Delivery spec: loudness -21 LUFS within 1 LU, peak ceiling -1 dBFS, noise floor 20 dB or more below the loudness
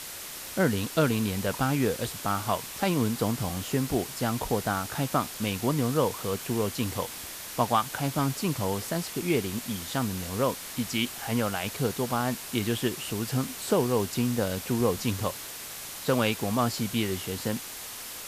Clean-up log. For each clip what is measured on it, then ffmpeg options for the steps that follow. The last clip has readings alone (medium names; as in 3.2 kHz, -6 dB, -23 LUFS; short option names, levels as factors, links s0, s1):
noise floor -40 dBFS; noise floor target -49 dBFS; loudness -29.0 LUFS; peak level -10.0 dBFS; loudness target -21.0 LUFS
-> -af "afftdn=nr=9:nf=-40"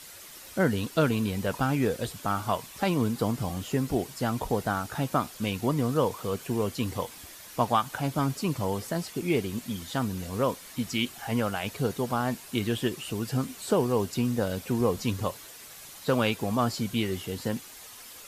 noise floor -47 dBFS; noise floor target -49 dBFS
-> -af "afftdn=nr=6:nf=-47"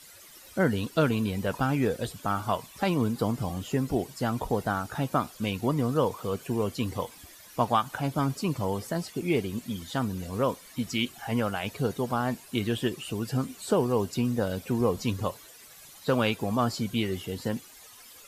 noise floor -51 dBFS; loudness -29.5 LUFS; peak level -10.5 dBFS; loudness target -21.0 LUFS
-> -af "volume=2.66"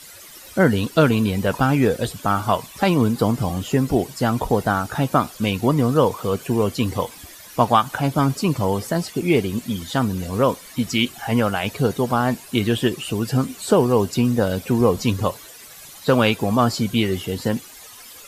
loudness -21.0 LUFS; peak level -2.0 dBFS; noise floor -42 dBFS